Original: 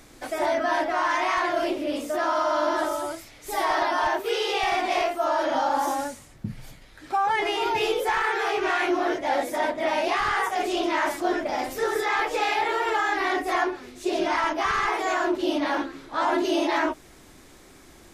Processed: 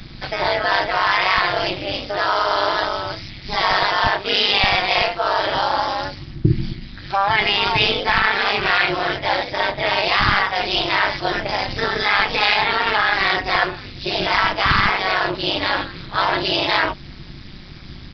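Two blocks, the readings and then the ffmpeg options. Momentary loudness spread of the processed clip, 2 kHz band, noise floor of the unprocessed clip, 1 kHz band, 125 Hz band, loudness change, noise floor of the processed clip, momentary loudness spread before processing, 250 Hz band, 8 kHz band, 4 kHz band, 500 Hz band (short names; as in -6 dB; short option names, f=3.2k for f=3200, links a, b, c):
9 LU, +9.0 dB, -50 dBFS, +4.5 dB, +19.5 dB, +6.5 dB, -37 dBFS, 6 LU, 0.0 dB, n/a, +13.5 dB, +1.5 dB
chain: -filter_complex "[0:a]lowshelf=f=200:t=q:w=3:g=9.5,acrossover=split=170|1600[a][b][c];[a]acontrast=49[d];[d][b][c]amix=inputs=3:normalize=0,crystalizer=i=7.5:c=0,tremolo=f=200:d=0.857,aresample=11025,aresample=44100,volume=5.5dB"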